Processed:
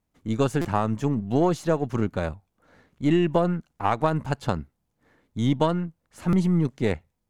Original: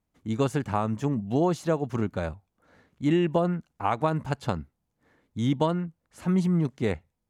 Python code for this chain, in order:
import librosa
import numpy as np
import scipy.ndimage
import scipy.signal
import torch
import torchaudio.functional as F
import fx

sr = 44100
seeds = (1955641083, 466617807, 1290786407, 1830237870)

y = np.where(x < 0.0, 10.0 ** (-3.0 / 20.0) * x, x)
y = fx.buffer_glitch(y, sr, at_s=(0.61, 6.29), block=256, repeats=6)
y = y * 10.0 ** (3.5 / 20.0)